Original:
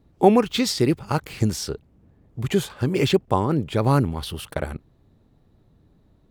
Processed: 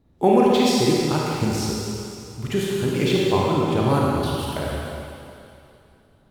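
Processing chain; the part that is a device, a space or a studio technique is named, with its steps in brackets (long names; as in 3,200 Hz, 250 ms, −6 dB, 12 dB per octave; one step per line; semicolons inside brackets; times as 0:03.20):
stairwell (convolution reverb RT60 2.6 s, pre-delay 31 ms, DRR −4 dB)
level −3.5 dB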